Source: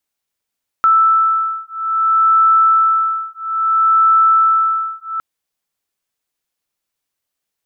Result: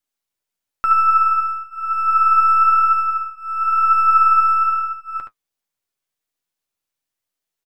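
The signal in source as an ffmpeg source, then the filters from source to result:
-f lavfi -i "aevalsrc='0.211*(sin(2*PI*1320*t)+sin(2*PI*1320.6*t))':d=4.36:s=44100"
-filter_complex "[0:a]aeval=exprs='if(lt(val(0),0),0.708*val(0),val(0))':c=same,flanger=delay=7.2:depth=4.8:regen=44:speed=1:shape=sinusoidal,asplit=2[a][b];[b]aecho=0:1:72:0.473[c];[a][c]amix=inputs=2:normalize=0"

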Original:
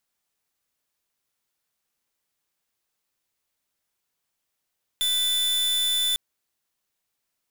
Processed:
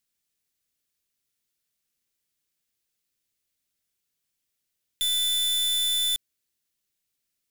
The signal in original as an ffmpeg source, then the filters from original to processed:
-f lavfi -i "aevalsrc='0.0668*(2*lt(mod(3510*t,1),0.44)-1)':d=1.15:s=44100"
-af "equalizer=f=900:t=o:w=1.6:g=-12"

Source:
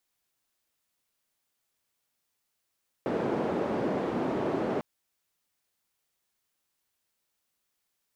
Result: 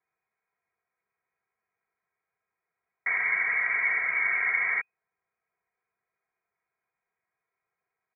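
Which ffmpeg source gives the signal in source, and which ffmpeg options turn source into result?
-f lavfi -i "anoisesrc=c=white:d=1.75:r=44100:seed=1,highpass=f=220,lowpass=f=440,volume=-5.5dB"
-af "aecho=1:1:3.4:0.95,lowpass=f=2.1k:t=q:w=0.5098,lowpass=f=2.1k:t=q:w=0.6013,lowpass=f=2.1k:t=q:w=0.9,lowpass=f=2.1k:t=q:w=2.563,afreqshift=-2500"

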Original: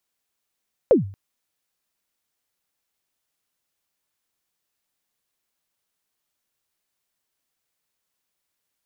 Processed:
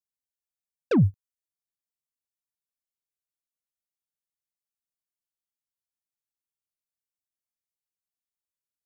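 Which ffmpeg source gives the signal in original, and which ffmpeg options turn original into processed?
-f lavfi -i "aevalsrc='0.422*pow(10,-3*t/0.43)*sin(2*PI*(580*0.134/log(98/580)*(exp(log(98/580)*min(t,0.134)/0.134)-1)+98*max(t-0.134,0)))':d=0.23:s=44100"
-af "asoftclip=type=tanh:threshold=-21dB,agate=range=-27dB:threshold=-30dB:ratio=16:detection=peak,bass=f=250:g=12,treble=f=4k:g=11"

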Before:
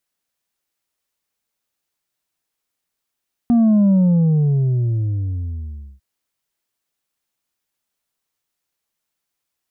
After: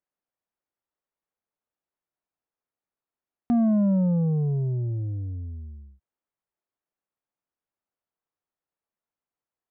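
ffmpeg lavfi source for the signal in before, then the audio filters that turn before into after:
-f lavfi -i "aevalsrc='0.282*clip((2.5-t)/2.09,0,1)*tanh(1.5*sin(2*PI*240*2.5/log(65/240)*(exp(log(65/240)*t/2.5)-1)))/tanh(1.5)':d=2.5:s=44100"
-af "lowshelf=f=400:g=-9.5,adynamicsmooth=sensitivity=5:basefreq=1.1k"

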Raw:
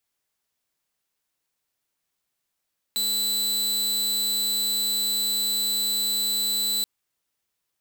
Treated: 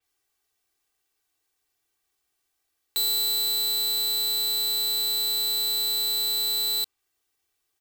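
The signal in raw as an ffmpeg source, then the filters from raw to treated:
-f lavfi -i "aevalsrc='0.1*(2*mod(3990*t,1)-1)':d=3.88:s=44100"
-af "aecho=1:1:2.6:0.89,adynamicequalizer=threshold=0.0112:dfrequency=5500:dqfactor=0.7:tfrequency=5500:tqfactor=0.7:attack=5:release=100:ratio=0.375:range=2:mode=cutabove:tftype=highshelf"

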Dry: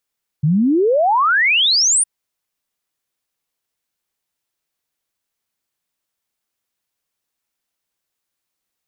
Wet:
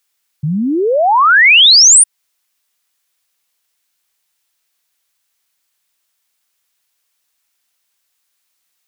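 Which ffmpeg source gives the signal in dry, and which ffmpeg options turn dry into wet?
-f lavfi -i "aevalsrc='0.266*clip(min(t,1.61-t)/0.01,0,1)*sin(2*PI*140*1.61/log(9700/140)*(exp(log(9700/140)*t/1.61)-1))':d=1.61:s=44100"
-filter_complex "[0:a]tiltshelf=f=740:g=-7,asplit=2[a][b];[b]acompressor=threshold=-17dB:ratio=6,volume=-2dB[c];[a][c]amix=inputs=2:normalize=0"

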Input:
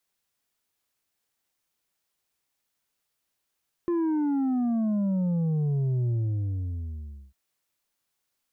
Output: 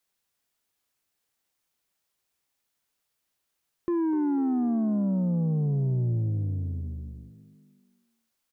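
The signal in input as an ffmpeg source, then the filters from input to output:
-f lavfi -i "aevalsrc='0.0668*clip((3.45-t)/1.24,0,1)*tanh(1.78*sin(2*PI*350*3.45/log(65/350)*(exp(log(65/350)*t/3.45)-1)))/tanh(1.78)':d=3.45:s=44100"
-filter_complex "[0:a]asplit=5[a][b][c][d][e];[b]adelay=248,afreqshift=40,volume=-14.5dB[f];[c]adelay=496,afreqshift=80,volume=-21.2dB[g];[d]adelay=744,afreqshift=120,volume=-28dB[h];[e]adelay=992,afreqshift=160,volume=-34.7dB[i];[a][f][g][h][i]amix=inputs=5:normalize=0"

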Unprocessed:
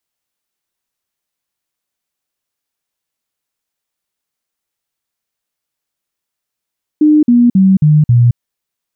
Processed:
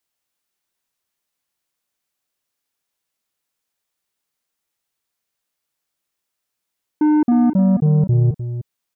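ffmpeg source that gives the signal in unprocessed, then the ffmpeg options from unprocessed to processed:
-f lavfi -i "aevalsrc='0.596*clip(min(mod(t,0.27),0.22-mod(t,0.27))/0.005,0,1)*sin(2*PI*303*pow(2,-floor(t/0.27)/3)*mod(t,0.27))':d=1.35:s=44100"
-filter_complex "[0:a]lowshelf=f=200:g=-2.5,asoftclip=type=tanh:threshold=-12dB,asplit=2[a][b];[b]aecho=0:1:304:0.299[c];[a][c]amix=inputs=2:normalize=0"

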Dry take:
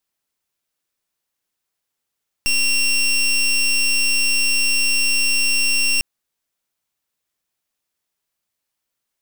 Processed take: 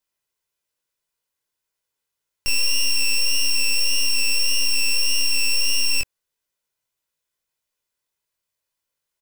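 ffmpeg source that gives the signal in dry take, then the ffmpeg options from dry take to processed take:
-f lavfi -i "aevalsrc='0.141*(2*lt(mod(2740*t,1),0.21)-1)':d=3.55:s=44100"
-af "flanger=delay=18:depth=7.4:speed=1.7,aecho=1:1:2:0.39"

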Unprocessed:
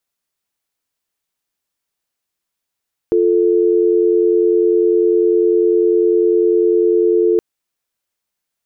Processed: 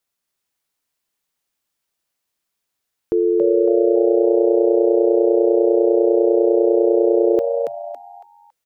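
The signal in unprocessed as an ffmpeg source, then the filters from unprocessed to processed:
-f lavfi -i "aevalsrc='0.224*(sin(2*PI*350*t)+sin(2*PI*440*t))':d=4.27:s=44100"
-filter_complex "[0:a]alimiter=limit=-10.5dB:level=0:latency=1:release=381,asplit=2[a][b];[b]asplit=4[c][d][e][f];[c]adelay=278,afreqshift=120,volume=-4dB[g];[d]adelay=556,afreqshift=240,volume=-13.9dB[h];[e]adelay=834,afreqshift=360,volume=-23.8dB[i];[f]adelay=1112,afreqshift=480,volume=-33.7dB[j];[g][h][i][j]amix=inputs=4:normalize=0[k];[a][k]amix=inputs=2:normalize=0"

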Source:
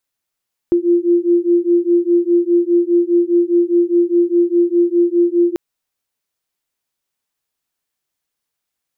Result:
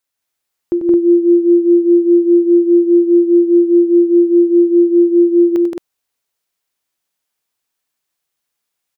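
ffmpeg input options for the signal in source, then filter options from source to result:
-f lavfi -i "aevalsrc='0.2*(sin(2*PI*344*t)+sin(2*PI*348.9*t))':d=4.84:s=44100"
-filter_complex "[0:a]lowshelf=f=250:g=-4.5,asplit=2[a][b];[b]aecho=0:1:93.29|172|218.7:0.355|0.708|0.708[c];[a][c]amix=inputs=2:normalize=0"

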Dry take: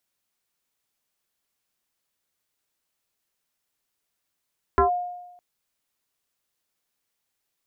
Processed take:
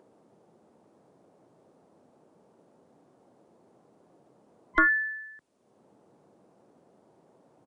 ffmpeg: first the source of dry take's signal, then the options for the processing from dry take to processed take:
-f lavfi -i "aevalsrc='0.224*pow(10,-3*t/1)*sin(2*PI*713*t+2.2*clip(1-t/0.12,0,1)*sin(2*PI*0.45*713*t))':d=0.61:s=44100"
-filter_complex "[0:a]afftfilt=real='real(if(lt(b,960),b+48*(1-2*mod(floor(b/48),2)),b),0)':imag='imag(if(lt(b,960),b+48*(1-2*mod(floor(b/48),2)),b),0)':win_size=2048:overlap=0.75,acrossover=split=130|740[a][b][c];[b]acompressor=mode=upward:threshold=-34dB:ratio=2.5[d];[a][d][c]amix=inputs=3:normalize=0,aresample=22050,aresample=44100"

